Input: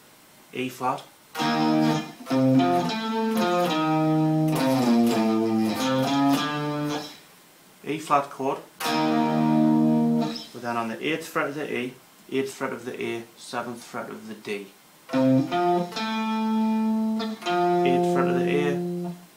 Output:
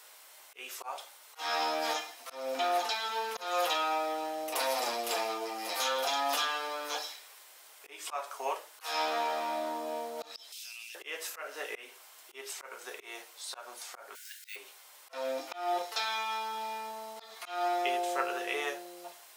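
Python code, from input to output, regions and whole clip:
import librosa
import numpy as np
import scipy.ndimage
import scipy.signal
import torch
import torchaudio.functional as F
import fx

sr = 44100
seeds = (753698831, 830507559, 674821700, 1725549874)

y = fx.chain(x, sr, fx.curve_eq(hz=(180.0, 480.0, 1000.0, 1700.0, 2500.0), db=(0, -27, -22, -10, 14)),
    fx.level_steps(step_db=22), at=(10.52, 10.95))
y = fx.chain(y, sr, fx.resample_bad(factor=2, down='none', up='hold'),
    fx.brickwall_highpass(low_hz=1400.0),
    fx.high_shelf(hz=4300.0, db=6.0), at=(14.15, 14.56))
y = scipy.signal.sosfilt(scipy.signal.butter(4, 500.0, 'highpass', fs=sr, output='sos'), y)
y = fx.tilt_eq(y, sr, slope=1.5)
y = fx.auto_swell(y, sr, attack_ms=211.0)
y = y * 10.0 ** (-4.0 / 20.0)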